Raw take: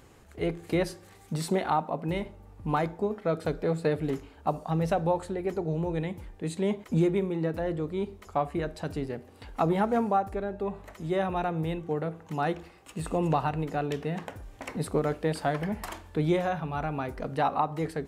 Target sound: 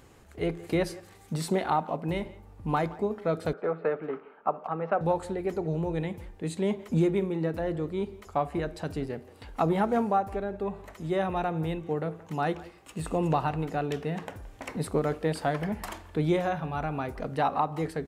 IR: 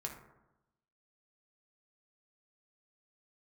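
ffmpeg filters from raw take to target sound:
-filter_complex "[0:a]asettb=1/sr,asplit=3[a][b][c];[a]atrim=end=3.534[d];[b]atrim=start=3.53:end=5.01,asetpts=PTS-STARTPTS,afade=t=in:d=0.004:c=qsin,afade=t=out:st=1.476:d=0.004:c=qsin,highpass=f=220:w=0.5412,highpass=f=220:w=1.3066,equalizer=f=290:t=q:w=4:g=-9,equalizer=f=1.3k:t=q:w=4:g=9,equalizer=f=1.9k:t=q:w=4:g=-3,lowpass=f=2.3k:w=0.5412,lowpass=f=2.3k:w=1.3066[e];[c]atrim=start=5.006[f];[d][e]acrossfade=d=0.004:c1=hsin:c2=qsin[g];[g][f]acrossfade=d=0.004:c1=qsin:c2=hsin,asplit=2[h][i];[i]adelay=170,highpass=300,lowpass=3.4k,asoftclip=type=hard:threshold=-20.5dB,volume=-19dB[j];[h][j]amix=inputs=2:normalize=0"

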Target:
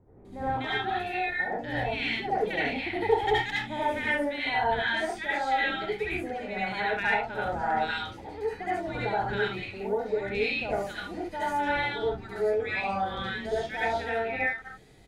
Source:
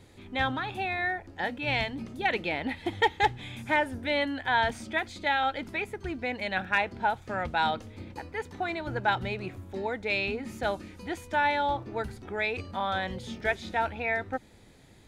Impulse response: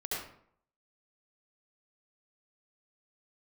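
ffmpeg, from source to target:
-filter_complex "[0:a]acrossover=split=1200[a][b];[b]adelay=250[c];[a][c]amix=inputs=2:normalize=0[d];[1:a]atrim=start_sample=2205,afade=t=out:st=0.21:d=0.01,atrim=end_sample=9702[e];[d][e]afir=irnorm=-1:irlink=0,volume=-2dB"

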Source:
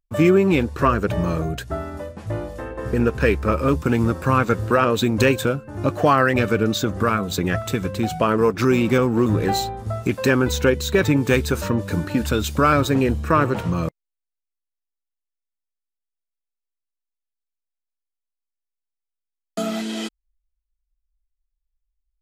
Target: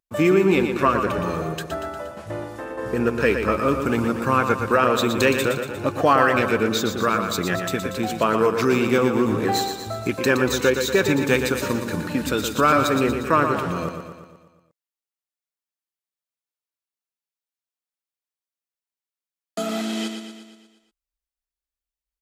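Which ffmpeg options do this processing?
-filter_complex "[0:a]highpass=f=270:p=1,asplit=2[a][b];[b]aecho=0:1:118|236|354|472|590|708|826:0.447|0.255|0.145|0.0827|0.0472|0.0269|0.0153[c];[a][c]amix=inputs=2:normalize=0"

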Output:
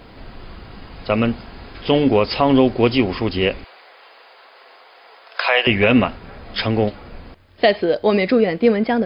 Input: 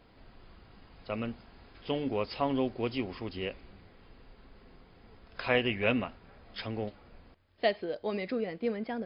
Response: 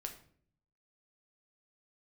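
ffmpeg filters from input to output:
-filter_complex "[0:a]asettb=1/sr,asplit=3[a][b][c];[a]atrim=end=3.644[d];[b]atrim=start=3.64:end=5.67,asetpts=PTS-STARTPTS,afade=t=in:d=0.004:c=qsin,afade=t=out:st=2.026:d=0.004:c=qsin,highpass=f=580:w=0.5412,highpass=f=580:w=1.3066[e];[c]atrim=start=5.666[f];[d][e]acrossfade=d=0.004:c1=hsin:c2=qsin[g];[g][f]acrossfade=d=0.004:c1=qsin:c2=hsin,alimiter=level_in=20.5dB:limit=-1dB:release=50:level=0:latency=1,volume=-3dB"

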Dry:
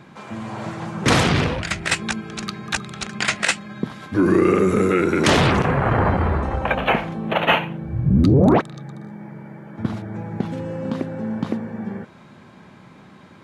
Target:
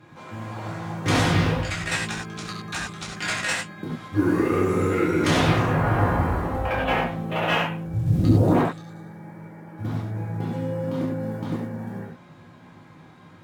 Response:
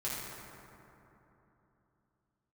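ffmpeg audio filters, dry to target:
-filter_complex "[0:a]aeval=exprs='(tanh(2.82*val(0)+0.1)-tanh(0.1))/2.82':c=same,acrusher=bits=8:mode=log:mix=0:aa=0.000001[a];[1:a]atrim=start_sample=2205,atrim=end_sample=4410,asetrate=35721,aresample=44100[b];[a][b]afir=irnorm=-1:irlink=0,volume=-6dB"

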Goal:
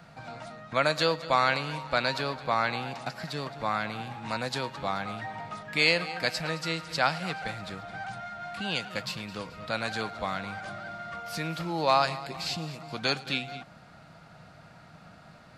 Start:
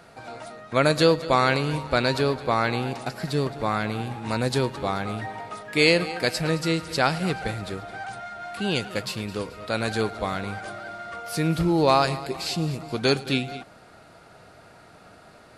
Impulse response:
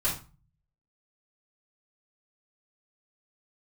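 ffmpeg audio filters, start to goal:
-filter_complex "[0:a]equalizer=f=160:t=o:w=0.67:g=9,equalizer=f=400:t=o:w=0.67:g=-10,equalizer=f=10k:t=o:w=0.67:g=-10,acrossover=split=340|1600|4500[a][b][c][d];[a]acompressor=threshold=-38dB:ratio=10[e];[e][b][c][d]amix=inputs=4:normalize=0,volume=-2dB"

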